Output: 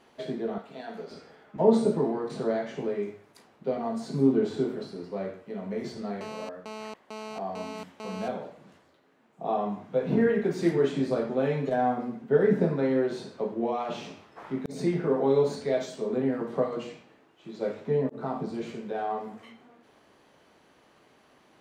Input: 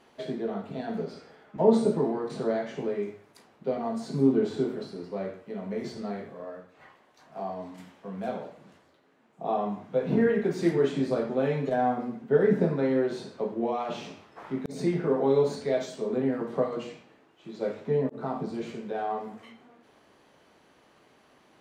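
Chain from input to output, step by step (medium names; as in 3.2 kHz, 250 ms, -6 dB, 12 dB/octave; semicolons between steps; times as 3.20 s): 0.58–1.11 s: high-pass 760 Hz 6 dB/octave; 6.21–8.28 s: mobile phone buzz -39 dBFS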